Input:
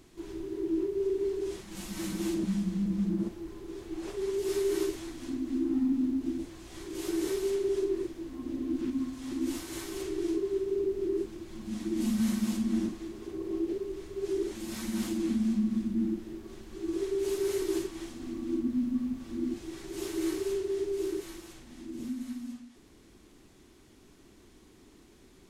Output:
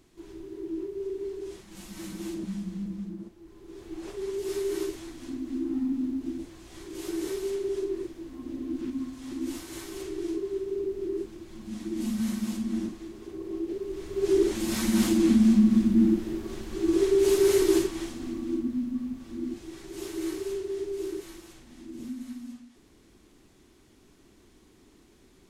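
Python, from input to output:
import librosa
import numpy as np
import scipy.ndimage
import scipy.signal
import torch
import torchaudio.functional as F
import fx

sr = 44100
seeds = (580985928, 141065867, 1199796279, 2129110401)

y = fx.gain(x, sr, db=fx.line((2.83, -4.0), (3.33, -11.5), (3.87, -1.0), (13.68, -1.0), (14.35, 9.0), (17.68, 9.0), (18.86, -1.0)))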